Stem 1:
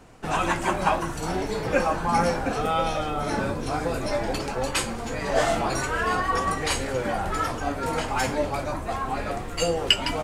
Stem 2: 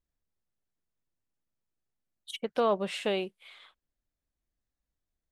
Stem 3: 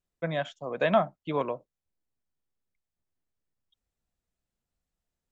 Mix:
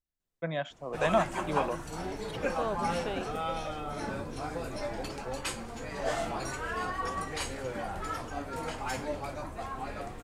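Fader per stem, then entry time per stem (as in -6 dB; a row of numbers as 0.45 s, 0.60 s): -9.5 dB, -7.5 dB, -3.0 dB; 0.70 s, 0.00 s, 0.20 s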